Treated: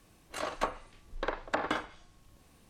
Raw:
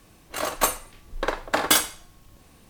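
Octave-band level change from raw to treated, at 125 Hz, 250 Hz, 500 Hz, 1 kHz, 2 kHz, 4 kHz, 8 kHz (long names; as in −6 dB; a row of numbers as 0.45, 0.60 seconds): −7.5, −7.5, −7.5, −8.0, −9.5, −17.0, −25.5 decibels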